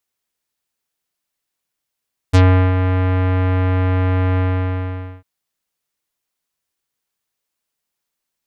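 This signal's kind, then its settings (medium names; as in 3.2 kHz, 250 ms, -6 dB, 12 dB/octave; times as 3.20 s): synth note square F#2 24 dB/octave, low-pass 2.5 kHz, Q 0.72, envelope 2.5 oct, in 0.09 s, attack 19 ms, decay 0.38 s, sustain -7.5 dB, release 0.85 s, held 2.05 s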